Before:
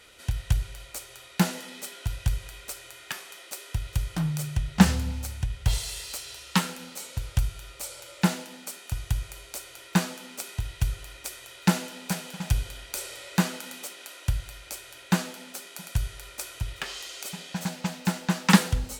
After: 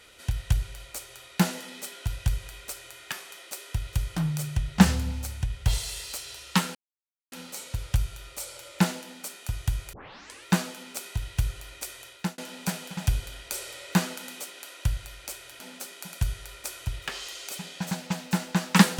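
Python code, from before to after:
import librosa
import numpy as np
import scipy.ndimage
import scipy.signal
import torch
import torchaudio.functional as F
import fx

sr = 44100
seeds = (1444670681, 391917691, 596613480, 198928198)

y = fx.edit(x, sr, fx.insert_silence(at_s=6.75, length_s=0.57),
    fx.tape_start(start_s=9.36, length_s=0.53),
    fx.fade_out_span(start_s=11.46, length_s=0.35),
    fx.cut(start_s=15.03, length_s=0.31), tone=tone)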